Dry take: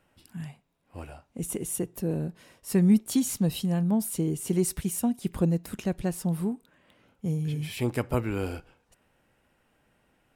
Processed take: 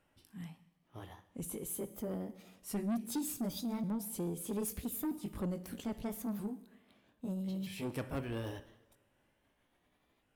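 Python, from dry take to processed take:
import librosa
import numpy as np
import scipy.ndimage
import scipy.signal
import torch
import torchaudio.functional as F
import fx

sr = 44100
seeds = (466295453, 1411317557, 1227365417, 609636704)

y = fx.pitch_ramps(x, sr, semitones=4.5, every_ms=1278)
y = fx.rev_double_slope(y, sr, seeds[0], early_s=0.98, late_s=2.8, knee_db=-23, drr_db=13.0)
y = 10.0 ** (-24.5 / 20.0) * np.tanh(y / 10.0 ** (-24.5 / 20.0))
y = y * 10.0 ** (-6.5 / 20.0)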